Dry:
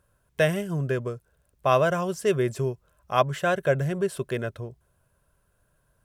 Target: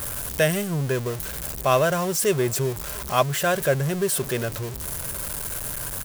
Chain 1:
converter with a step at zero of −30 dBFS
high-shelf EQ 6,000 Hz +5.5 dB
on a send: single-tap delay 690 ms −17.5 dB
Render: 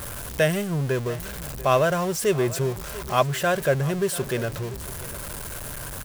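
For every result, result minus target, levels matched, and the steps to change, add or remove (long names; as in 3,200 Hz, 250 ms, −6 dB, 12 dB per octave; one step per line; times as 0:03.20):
echo-to-direct +9.5 dB; 8,000 Hz band −4.0 dB
change: single-tap delay 690 ms −27 dB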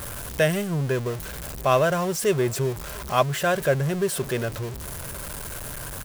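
8,000 Hz band −4.0 dB
change: high-shelf EQ 6,000 Hz +13 dB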